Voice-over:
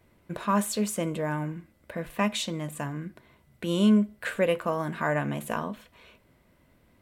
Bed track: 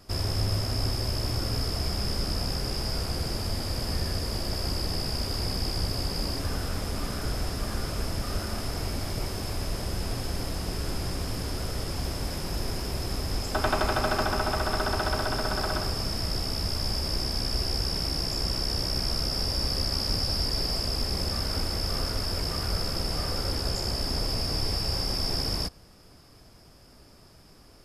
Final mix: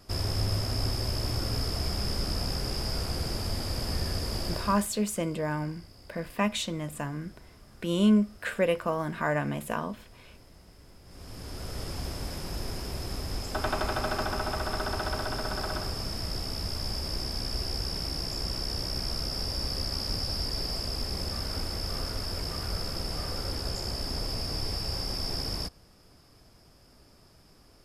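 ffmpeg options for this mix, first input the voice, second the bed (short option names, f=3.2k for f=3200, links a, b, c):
-filter_complex "[0:a]adelay=4200,volume=-1dB[a];[1:a]volume=17.5dB,afade=t=out:st=4.47:d=0.41:silence=0.0841395,afade=t=in:st=11.05:d=0.79:silence=0.112202[b];[a][b]amix=inputs=2:normalize=0"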